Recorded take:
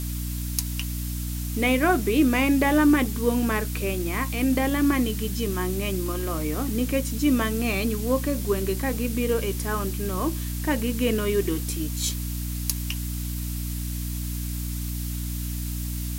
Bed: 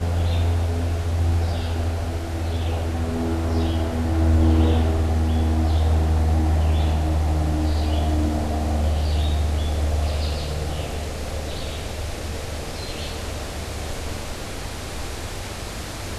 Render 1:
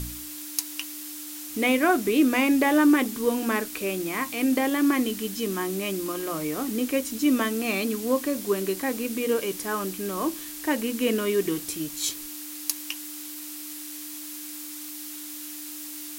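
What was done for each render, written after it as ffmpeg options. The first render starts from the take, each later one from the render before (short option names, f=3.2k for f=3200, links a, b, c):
-af "bandreject=f=60:t=h:w=4,bandreject=f=120:t=h:w=4,bandreject=f=180:t=h:w=4,bandreject=f=240:t=h:w=4"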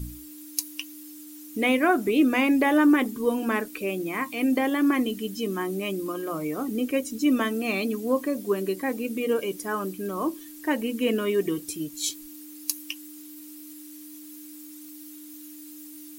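-af "afftdn=nr=13:nf=-38"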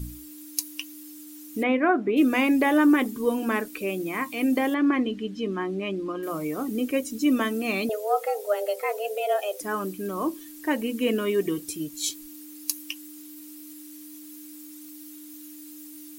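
-filter_complex "[0:a]asplit=3[a][b][c];[a]afade=t=out:st=1.62:d=0.02[d];[b]highpass=140,lowpass=2.1k,afade=t=in:st=1.62:d=0.02,afade=t=out:st=2.16:d=0.02[e];[c]afade=t=in:st=2.16:d=0.02[f];[d][e][f]amix=inputs=3:normalize=0,asettb=1/sr,asplit=3[g][h][i];[g]atrim=end=4.744[j];[h]atrim=start=4.74:end=6.23,asetpts=PTS-STARTPTS,afade=t=in:d=0.004:c=qsin,afade=t=out:st=1.486:d=0.004:c=qsin,lowpass=3.4k[k];[i]atrim=start=6.226[l];[j][k]acrossfade=d=0.004:c1=hsin:c2=qsin[m];[m][l]acrossfade=d=0.004:c1=qsin:c2=hsin,asettb=1/sr,asplit=3[n][o][p];[n]atrim=end=7.894[q];[o]atrim=start=7.89:end=9.61,asetpts=PTS-STARTPTS,afade=t=in:d=0.004:c=qsin,afade=t=out:st=1.716:d=0.004:c=qsin,afreqshift=210[r];[p]atrim=start=9.606[s];[q][r]acrossfade=d=0.004:c1=hsin:c2=qsin[t];[t][s]acrossfade=d=0.004:c1=qsin:c2=hsin"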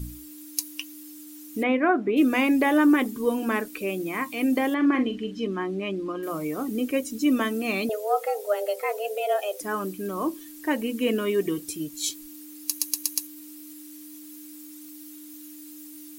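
-filter_complex "[0:a]asettb=1/sr,asplit=3[a][b][c];[a]atrim=end=4.764[d];[b]atrim=start=4.76:end=5.47,asetpts=PTS-STARTPTS,afade=t=in:d=0.004:c=qsin,afade=t=out:st=0.706:d=0.004:c=qsin,asplit=2[e][f];[f]adelay=43,volume=-10dB[g];[e][g]amix=inputs=2:normalize=0,atrim=end_sample=31311[h];[c]atrim=start=5.466[i];[d][h]acrossfade=d=0.004:c1=hsin:c2=qsin[j];[j][i]acrossfade=d=0.004:c1=qsin:c2=hsin,asplit=6[k][l][m][n][o][p];[k]atrim=end=12.792[q];[l]atrim=start=12.668:end=12.792[r];[m]atrim=start=12.668:end=12.792[s];[n]atrim=start=12.668:end=12.792[t];[o]atrim=start=12.668:end=12.792[u];[p]atrim=start=13.268[v];[q][r]acrossfade=d=0.004:c1=hsin:c2=hsin[w];[w][s]acrossfade=d=0.004:c1=hsin:c2=hsin[x];[x][t]acrossfade=d=0.004:c1=hsin:c2=hsin[y];[y][u]acrossfade=d=0.004:c1=hsin:c2=hsin[z];[z][v]acrossfade=d=0.004:c1=hsin:c2=hsin"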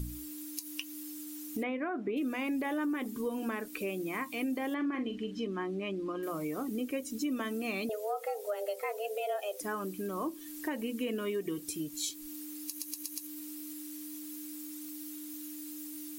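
-af "alimiter=limit=-16dB:level=0:latency=1:release=85,acompressor=threshold=-36dB:ratio=2.5"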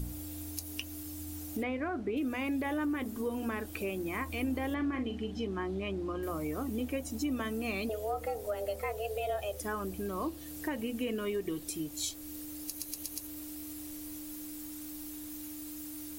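-filter_complex "[1:a]volume=-27dB[a];[0:a][a]amix=inputs=2:normalize=0"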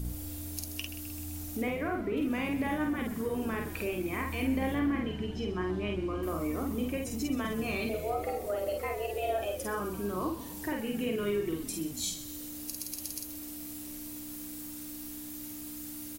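-filter_complex "[0:a]asplit=2[a][b];[b]adelay=49,volume=-3dB[c];[a][c]amix=inputs=2:normalize=0,asplit=7[d][e][f][g][h][i][j];[e]adelay=129,afreqshift=-64,volume=-13dB[k];[f]adelay=258,afreqshift=-128,volume=-17.6dB[l];[g]adelay=387,afreqshift=-192,volume=-22.2dB[m];[h]adelay=516,afreqshift=-256,volume=-26.7dB[n];[i]adelay=645,afreqshift=-320,volume=-31.3dB[o];[j]adelay=774,afreqshift=-384,volume=-35.9dB[p];[d][k][l][m][n][o][p]amix=inputs=7:normalize=0"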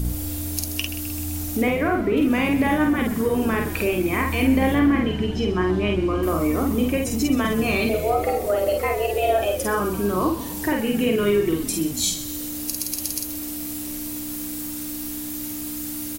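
-af "volume=11.5dB"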